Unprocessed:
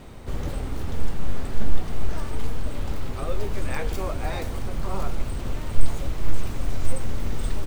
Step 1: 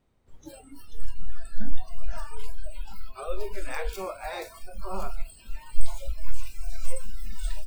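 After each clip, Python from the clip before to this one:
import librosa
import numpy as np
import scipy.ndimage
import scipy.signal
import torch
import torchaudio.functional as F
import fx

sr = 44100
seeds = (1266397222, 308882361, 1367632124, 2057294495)

y = fx.noise_reduce_blind(x, sr, reduce_db=26)
y = y * 10.0 ** (-1.5 / 20.0)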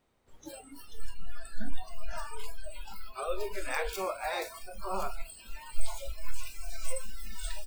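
y = fx.low_shelf(x, sr, hz=250.0, db=-11.0)
y = y * 10.0 ** (2.5 / 20.0)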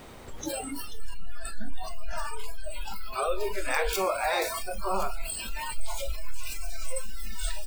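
y = fx.env_flatten(x, sr, amount_pct=50)
y = y * 10.0 ** (-3.0 / 20.0)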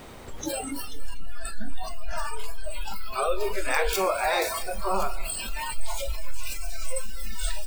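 y = fx.echo_feedback(x, sr, ms=244, feedback_pct=48, wet_db=-20.5)
y = y * 10.0 ** (2.5 / 20.0)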